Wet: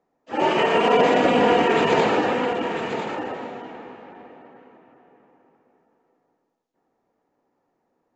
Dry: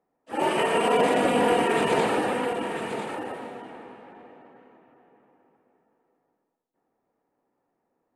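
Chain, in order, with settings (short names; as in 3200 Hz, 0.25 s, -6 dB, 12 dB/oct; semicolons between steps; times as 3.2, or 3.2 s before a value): steep low-pass 7300 Hz 96 dB/oct; de-hum 68.45 Hz, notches 27; gain +4.5 dB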